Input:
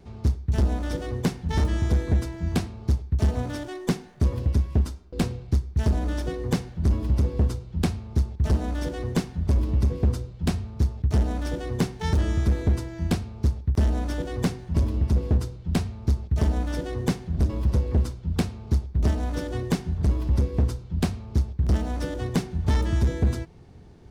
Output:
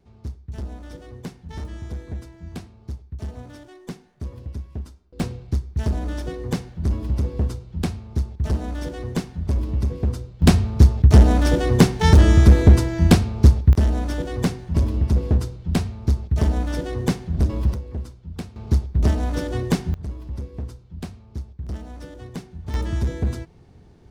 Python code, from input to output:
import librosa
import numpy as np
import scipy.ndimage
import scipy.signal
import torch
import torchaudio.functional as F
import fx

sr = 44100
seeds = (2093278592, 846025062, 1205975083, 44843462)

y = fx.gain(x, sr, db=fx.steps((0.0, -10.0), (5.2, -0.5), (10.42, 11.0), (13.73, 3.0), (17.74, -8.0), (18.56, 4.0), (19.94, -9.0), (22.74, -1.0)))